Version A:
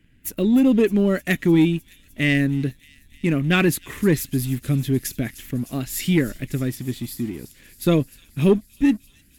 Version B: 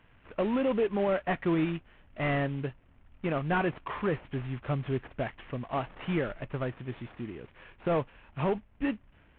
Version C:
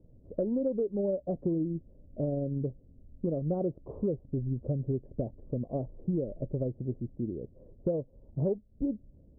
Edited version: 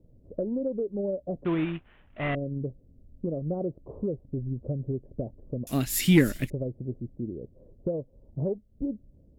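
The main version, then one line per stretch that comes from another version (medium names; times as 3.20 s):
C
1.45–2.35 s: from B
5.67–6.50 s: from A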